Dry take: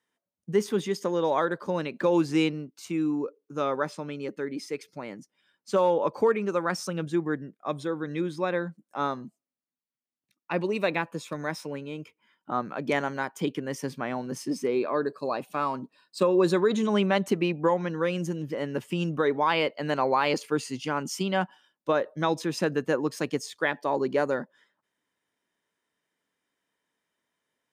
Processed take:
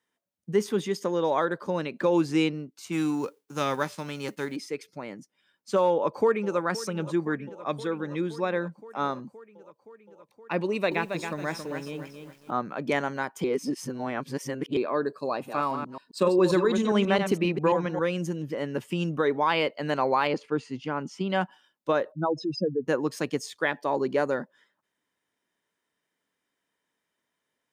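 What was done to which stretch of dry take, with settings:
2.91–4.55 spectral whitening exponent 0.6
5.91–6.58 echo throw 0.52 s, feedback 80%, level -16 dB
7.19–7.98 dynamic EQ 2400 Hz, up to +4 dB, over -48 dBFS, Q 0.94
10.64–12.51 lo-fi delay 0.274 s, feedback 35%, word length 9-bit, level -7 dB
13.44–14.77 reverse
15.31–18 reverse delay 0.134 s, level -6.5 dB
20.27–21.3 tape spacing loss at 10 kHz 21 dB
22.12–22.88 spectral contrast raised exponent 3.3

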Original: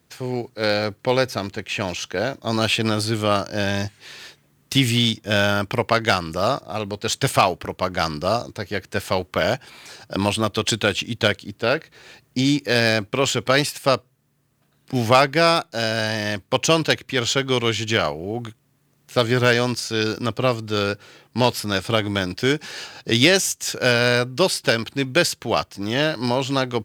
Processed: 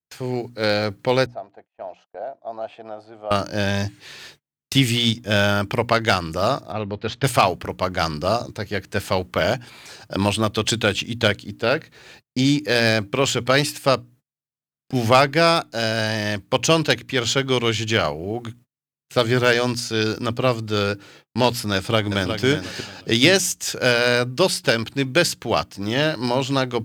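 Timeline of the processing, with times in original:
1.26–3.31 band-pass 700 Hz, Q 5.8
6.72–7.24 air absorption 270 m
21.75–22.44 echo throw 0.36 s, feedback 20%, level -7.5 dB
whole clip: notches 60/120/180/240/300 Hz; gate -47 dBFS, range -37 dB; low shelf 180 Hz +3.5 dB

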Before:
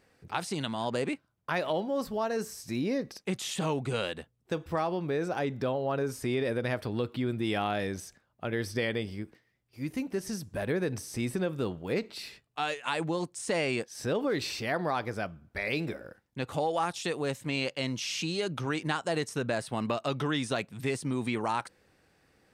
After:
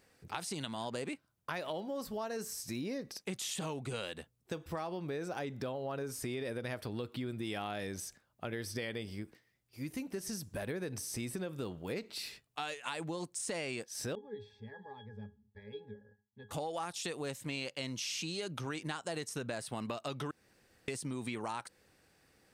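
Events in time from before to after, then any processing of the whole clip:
14.15–16.51 octave resonator G#, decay 0.19 s
20.31–20.88 room tone
whole clip: high shelf 4600 Hz +8 dB; compressor 3:1, threshold -34 dBFS; gain -3 dB

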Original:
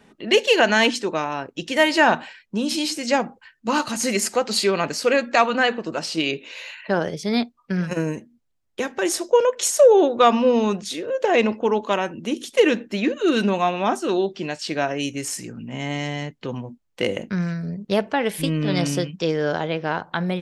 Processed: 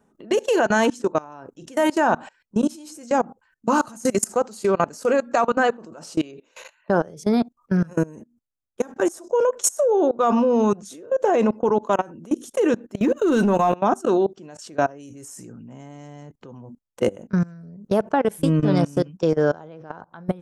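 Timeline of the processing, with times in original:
13–13.75 sample leveller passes 1
whole clip: band shelf 3000 Hz -12.5 dB; level quantiser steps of 23 dB; gain +5.5 dB

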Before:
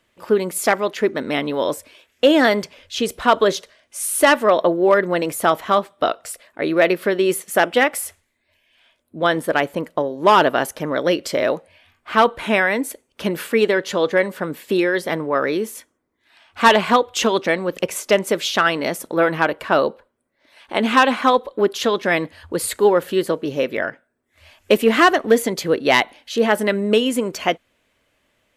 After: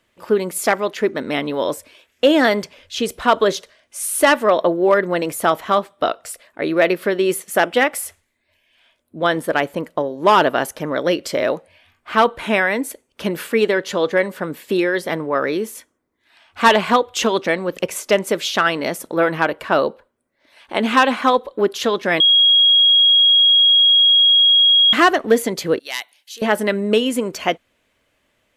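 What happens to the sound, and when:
22.2–24.93 bleep 3290 Hz -9 dBFS
25.79–26.42 differentiator

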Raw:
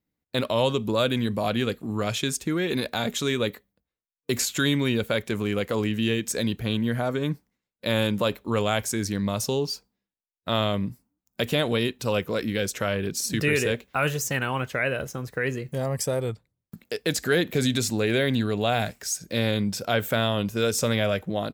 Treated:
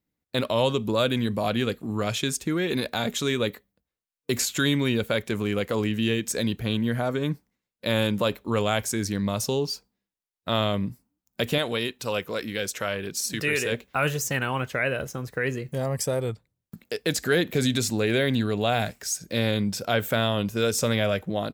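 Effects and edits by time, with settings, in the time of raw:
11.58–13.72 low shelf 390 Hz -8 dB

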